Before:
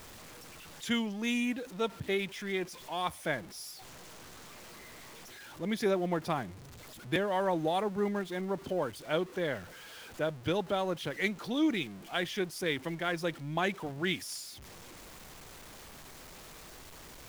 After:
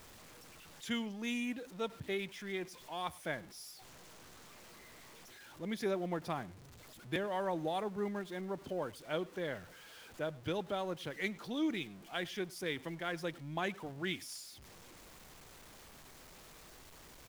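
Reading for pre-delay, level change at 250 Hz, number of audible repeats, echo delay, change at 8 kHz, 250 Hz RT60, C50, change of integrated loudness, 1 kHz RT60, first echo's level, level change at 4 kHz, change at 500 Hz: none, -6.0 dB, 1, 0.102 s, -6.0 dB, none, none, -6.0 dB, none, -23.5 dB, -6.0 dB, -6.0 dB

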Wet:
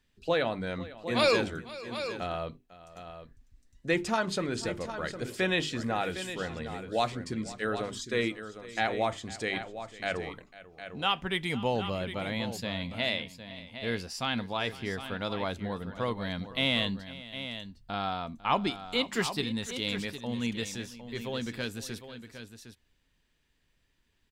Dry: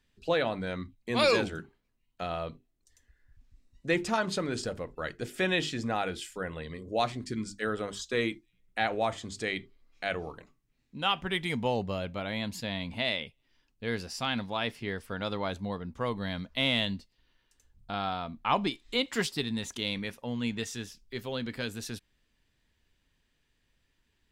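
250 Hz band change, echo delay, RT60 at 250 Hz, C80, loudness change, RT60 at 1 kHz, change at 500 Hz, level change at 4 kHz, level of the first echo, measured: +0.5 dB, 0.5 s, none, none, 0.0 dB, none, +0.5 dB, +0.5 dB, -18.0 dB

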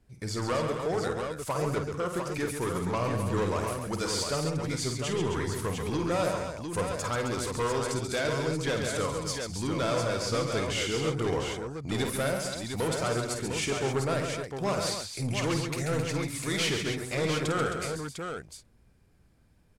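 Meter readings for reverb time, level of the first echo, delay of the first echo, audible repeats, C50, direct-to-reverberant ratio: none, -7.5 dB, 51 ms, 5, none, none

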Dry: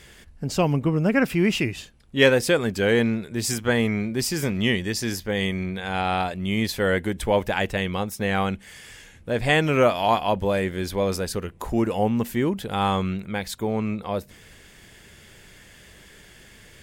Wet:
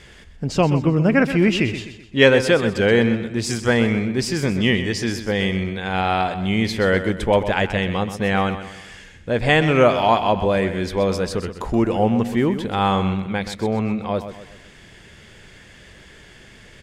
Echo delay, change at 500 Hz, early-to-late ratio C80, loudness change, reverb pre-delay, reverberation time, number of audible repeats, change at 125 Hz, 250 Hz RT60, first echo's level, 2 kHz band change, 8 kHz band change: 0.127 s, +4.0 dB, none, +4.0 dB, none, none, 4, +4.5 dB, none, -11.0 dB, +4.0 dB, -1.5 dB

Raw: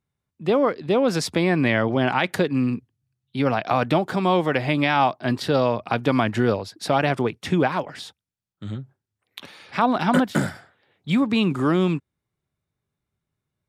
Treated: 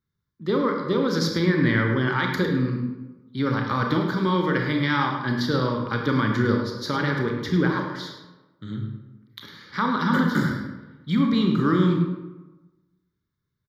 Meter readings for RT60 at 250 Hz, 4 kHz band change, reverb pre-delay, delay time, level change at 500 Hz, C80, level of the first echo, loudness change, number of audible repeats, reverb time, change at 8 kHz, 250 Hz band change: 1.2 s, -1.0 dB, 26 ms, 0.104 s, -4.5 dB, 5.5 dB, -11.0 dB, -1.5 dB, 1, 1.1 s, n/a, 0.0 dB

